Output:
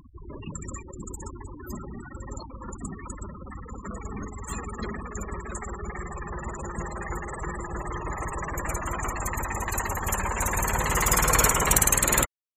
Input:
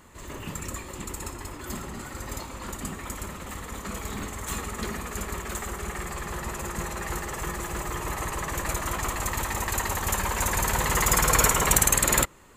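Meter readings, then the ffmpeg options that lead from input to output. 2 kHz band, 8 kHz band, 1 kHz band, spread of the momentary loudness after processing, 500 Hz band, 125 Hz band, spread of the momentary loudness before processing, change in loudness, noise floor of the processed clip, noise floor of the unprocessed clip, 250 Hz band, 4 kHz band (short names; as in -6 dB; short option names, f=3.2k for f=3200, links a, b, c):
-1.0 dB, -1.0 dB, -0.5 dB, 19 LU, -0.5 dB, 0.0 dB, 17 LU, +0.5 dB, -44 dBFS, -41 dBFS, 0.0 dB, -3.5 dB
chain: -af "acompressor=mode=upward:threshold=-35dB:ratio=2.5,afftfilt=real='re*gte(hypot(re,im),0.0316)':imag='im*gte(hypot(re,im),0.0316)':win_size=1024:overlap=0.75"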